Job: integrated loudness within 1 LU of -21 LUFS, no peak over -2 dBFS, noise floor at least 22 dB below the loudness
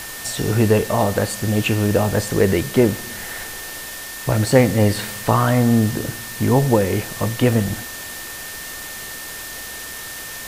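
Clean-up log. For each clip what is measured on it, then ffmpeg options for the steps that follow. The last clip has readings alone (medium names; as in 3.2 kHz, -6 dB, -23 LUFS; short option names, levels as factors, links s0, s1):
steady tone 1.8 kHz; tone level -36 dBFS; noise floor -33 dBFS; noise floor target -42 dBFS; loudness -20.0 LUFS; peak level -1.0 dBFS; loudness target -21.0 LUFS
-> -af "bandreject=f=1800:w=30"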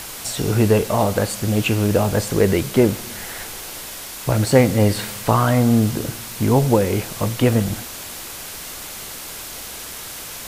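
steady tone not found; noise floor -34 dBFS; noise floor target -41 dBFS
-> -af "afftdn=nr=7:nf=-34"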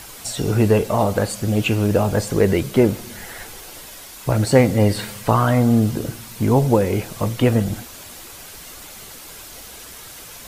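noise floor -39 dBFS; noise floor target -41 dBFS
-> -af "afftdn=nr=6:nf=-39"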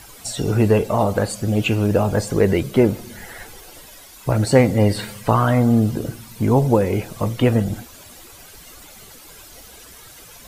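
noise floor -43 dBFS; loudness -19.0 LUFS; peak level -1.5 dBFS; loudness target -21.0 LUFS
-> -af "volume=0.794"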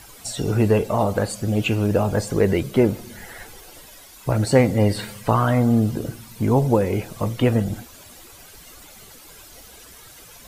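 loudness -21.0 LUFS; peak level -3.5 dBFS; noise floor -45 dBFS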